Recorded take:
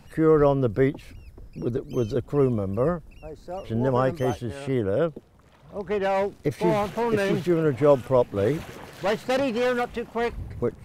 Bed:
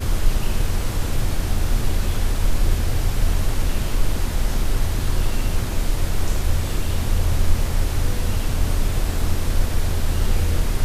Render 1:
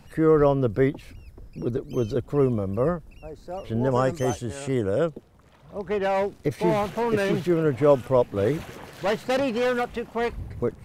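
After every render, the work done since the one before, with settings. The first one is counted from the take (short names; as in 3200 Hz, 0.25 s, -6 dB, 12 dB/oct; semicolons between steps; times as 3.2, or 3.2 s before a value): 3.91–5.1 bell 7200 Hz +13.5 dB 0.64 oct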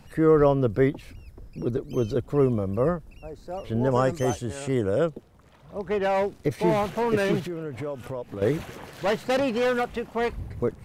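7.39–8.42 compressor 5:1, threshold -30 dBFS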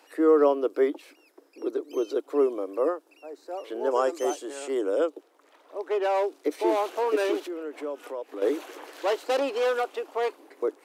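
Chebyshev high-pass 290 Hz, order 6; dynamic EQ 1900 Hz, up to -6 dB, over -49 dBFS, Q 2.5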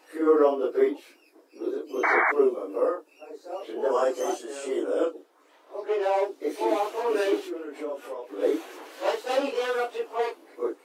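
phase scrambler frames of 0.1 s; 2.03–2.32 painted sound noise 620–2300 Hz -22 dBFS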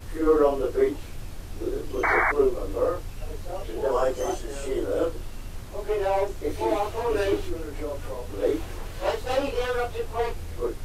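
add bed -16 dB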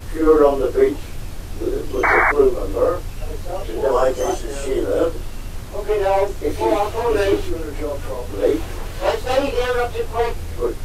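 gain +7 dB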